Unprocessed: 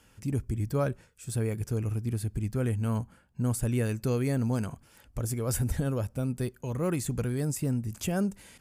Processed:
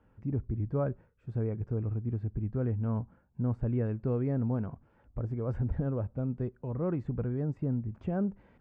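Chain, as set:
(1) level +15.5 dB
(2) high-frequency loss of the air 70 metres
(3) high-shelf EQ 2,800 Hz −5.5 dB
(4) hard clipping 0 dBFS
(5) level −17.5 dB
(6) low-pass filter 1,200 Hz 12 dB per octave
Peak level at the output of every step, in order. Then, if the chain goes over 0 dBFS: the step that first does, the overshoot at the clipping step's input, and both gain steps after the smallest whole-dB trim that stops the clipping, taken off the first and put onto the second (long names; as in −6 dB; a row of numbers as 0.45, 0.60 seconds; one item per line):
−1.5, −2.0, −2.0, −2.0, −19.5, −20.0 dBFS
no step passes full scale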